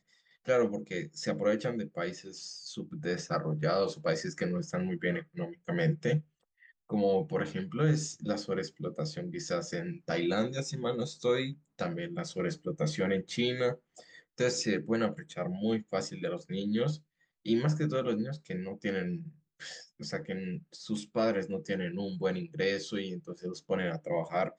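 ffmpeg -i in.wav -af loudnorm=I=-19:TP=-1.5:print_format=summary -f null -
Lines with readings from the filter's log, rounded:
Input Integrated:    -33.4 LUFS
Input True Peak:     -15.8 dBTP
Input LRA:             2.2 LU
Input Threshold:     -43.6 LUFS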